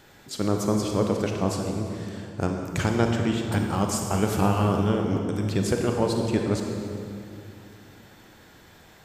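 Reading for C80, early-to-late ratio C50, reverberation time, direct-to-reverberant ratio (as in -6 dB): 4.0 dB, 3.0 dB, 2.6 s, 2.0 dB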